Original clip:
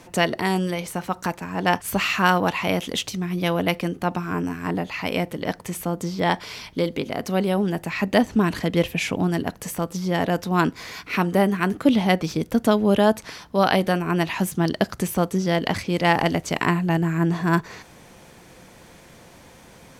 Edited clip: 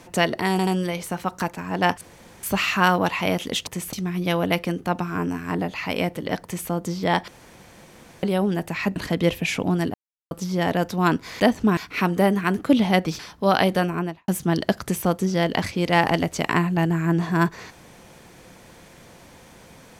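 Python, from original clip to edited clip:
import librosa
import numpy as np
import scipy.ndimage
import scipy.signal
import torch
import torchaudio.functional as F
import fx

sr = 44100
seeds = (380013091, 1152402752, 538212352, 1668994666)

y = fx.studio_fade_out(x, sr, start_s=13.97, length_s=0.43)
y = fx.edit(y, sr, fx.stutter(start_s=0.51, slice_s=0.08, count=3),
    fx.insert_room_tone(at_s=1.85, length_s=0.42),
    fx.duplicate(start_s=5.6, length_s=0.26, to_s=3.09),
    fx.room_tone_fill(start_s=6.44, length_s=0.95),
    fx.move(start_s=8.12, length_s=0.37, to_s=10.93),
    fx.silence(start_s=9.47, length_s=0.37),
    fx.cut(start_s=12.35, length_s=0.96), tone=tone)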